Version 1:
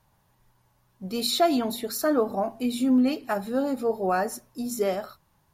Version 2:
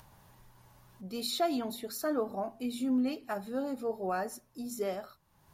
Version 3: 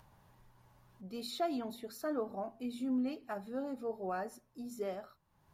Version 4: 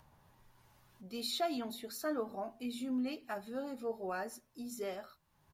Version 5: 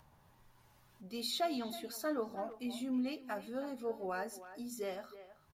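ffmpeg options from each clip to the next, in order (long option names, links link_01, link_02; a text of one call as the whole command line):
ffmpeg -i in.wav -af "acompressor=mode=upward:threshold=-36dB:ratio=2.5,volume=-8.5dB" out.wav
ffmpeg -i in.wav -af "highshelf=frequency=3900:gain=-7.5,volume=-4.5dB" out.wav
ffmpeg -i in.wav -filter_complex "[0:a]acrossover=split=660|1700[link_01][link_02][link_03];[link_03]dynaudnorm=framelen=190:gausssize=5:maxgain=7dB[link_04];[link_01][link_02][link_04]amix=inputs=3:normalize=0,asplit=2[link_05][link_06];[link_06]adelay=13,volume=-10.5dB[link_07];[link_05][link_07]amix=inputs=2:normalize=0,volume=-1.5dB" out.wav
ffmpeg -i in.wav -filter_complex "[0:a]asplit=2[link_01][link_02];[link_02]adelay=320,highpass=300,lowpass=3400,asoftclip=type=hard:threshold=-31.5dB,volume=-13dB[link_03];[link_01][link_03]amix=inputs=2:normalize=0" out.wav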